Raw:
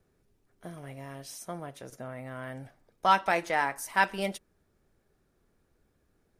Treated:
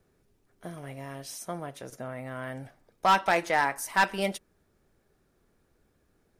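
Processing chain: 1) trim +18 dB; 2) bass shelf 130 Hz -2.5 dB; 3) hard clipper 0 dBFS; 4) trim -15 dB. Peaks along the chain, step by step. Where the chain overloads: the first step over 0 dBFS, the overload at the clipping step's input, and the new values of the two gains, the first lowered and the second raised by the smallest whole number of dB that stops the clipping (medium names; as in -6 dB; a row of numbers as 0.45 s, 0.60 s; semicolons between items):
+9.0 dBFS, +9.0 dBFS, 0.0 dBFS, -15.0 dBFS; step 1, 9.0 dB; step 1 +9 dB, step 4 -6 dB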